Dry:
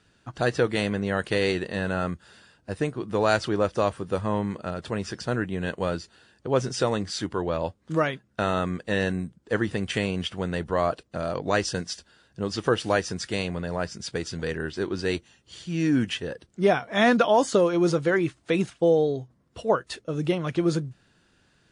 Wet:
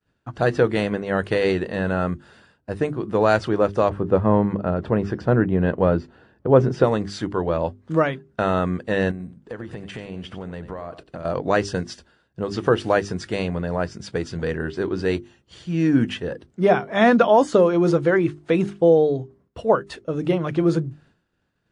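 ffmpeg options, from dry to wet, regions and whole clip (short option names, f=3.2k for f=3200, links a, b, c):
-filter_complex "[0:a]asettb=1/sr,asplit=3[a][b][c];[a]atrim=end=3.894[d];[b]atrim=start=3.89:end=6.84,asetpts=PTS-STARTPTS,afade=t=in:d=0.004:c=qsin,afade=t=out:st=2.946:d=0.004:c=qsin,lowpass=f=1.1k:p=1,acontrast=29[e];[c]atrim=start=6.836[f];[d][e]acrossfade=d=0.004:c1=hsin:c2=qsin[g];[g][f]acrossfade=d=0.004:c1=qsin:c2=hsin,asettb=1/sr,asplit=3[h][i][j];[h]atrim=end=9.114[k];[i]atrim=start=9.11:end=11.25,asetpts=PTS-STARTPTS,afade=t=in:d=0.004:c=qsin,afade=t=out:st=2.136:d=0.004:c=qsin,acompressor=threshold=-33dB:ratio=10:attack=3.2:release=140:knee=1:detection=peak,aecho=1:1:92:0.237,atrim=end_sample=94374[l];[j]atrim=start=11.246[m];[k][l]acrossfade=d=0.004:c1=hsin:c2=qsin[n];[n][m]acrossfade=d=0.004:c1=qsin:c2=hsin,highshelf=f=2.7k:g=-12,agate=range=-33dB:threshold=-55dB:ratio=3:detection=peak,bandreject=f=50:t=h:w=6,bandreject=f=100:t=h:w=6,bandreject=f=150:t=h:w=6,bandreject=f=200:t=h:w=6,bandreject=f=250:t=h:w=6,bandreject=f=300:t=h:w=6,bandreject=f=350:t=h:w=6,bandreject=f=400:t=h:w=6,volume=5.5dB"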